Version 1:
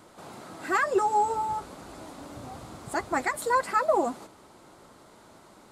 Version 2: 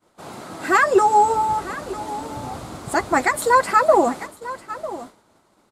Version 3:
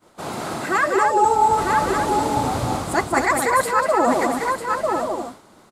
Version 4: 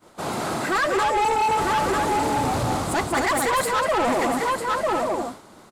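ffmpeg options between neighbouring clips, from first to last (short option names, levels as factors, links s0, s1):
-af "aecho=1:1:948:0.168,agate=range=0.0224:threshold=0.00794:ratio=3:detection=peak,volume=2.82"
-af "areverse,acompressor=threshold=0.0708:ratio=16,areverse,aecho=1:1:189.5|256.6:0.562|0.501,volume=2.37"
-af "asoftclip=type=tanh:threshold=0.0944,volume=1.33"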